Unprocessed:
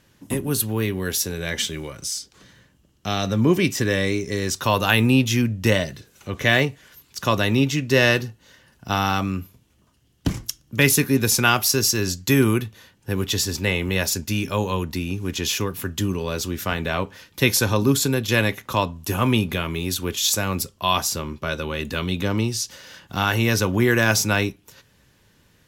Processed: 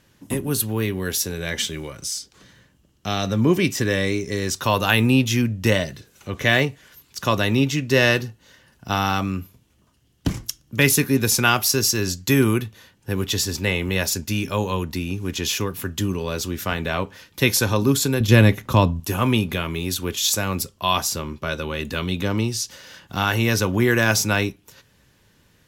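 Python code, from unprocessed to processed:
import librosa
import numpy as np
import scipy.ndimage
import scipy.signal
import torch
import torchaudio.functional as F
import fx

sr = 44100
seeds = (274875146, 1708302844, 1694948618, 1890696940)

y = fx.low_shelf(x, sr, hz=350.0, db=12.0, at=(18.2, 19.0))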